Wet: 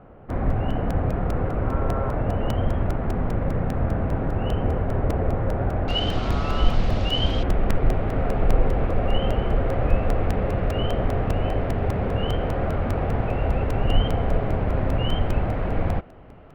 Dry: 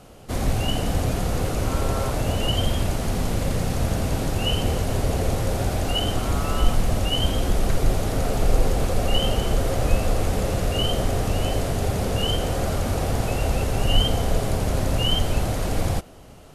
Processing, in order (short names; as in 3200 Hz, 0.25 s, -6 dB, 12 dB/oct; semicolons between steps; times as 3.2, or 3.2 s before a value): LPF 1800 Hz 24 dB/oct, from 5.88 s 4500 Hz, from 7.43 s 2300 Hz; crackling interface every 0.20 s, samples 128, repeat, from 0.3